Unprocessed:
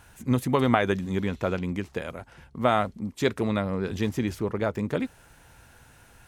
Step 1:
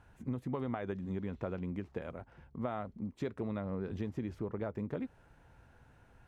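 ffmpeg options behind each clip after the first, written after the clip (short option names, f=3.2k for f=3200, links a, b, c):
-af "lowpass=f=1k:p=1,acompressor=threshold=-28dB:ratio=6,volume=-5.5dB"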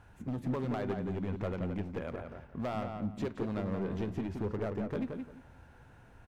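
-filter_complex "[0:a]volume=34dB,asoftclip=hard,volume=-34dB,flanger=delay=9.1:depth=4.5:regen=83:speed=0.66:shape=triangular,asplit=2[a][b];[b]adelay=174,lowpass=f=2.9k:p=1,volume=-5dB,asplit=2[c][d];[d]adelay=174,lowpass=f=2.9k:p=1,volume=0.23,asplit=2[e][f];[f]adelay=174,lowpass=f=2.9k:p=1,volume=0.23[g];[a][c][e][g]amix=inputs=4:normalize=0,volume=8dB"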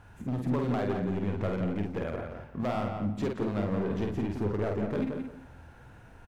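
-filter_complex "[0:a]asplit=2[a][b];[b]adelay=49,volume=-4dB[c];[a][c]amix=inputs=2:normalize=0,volume=3.5dB"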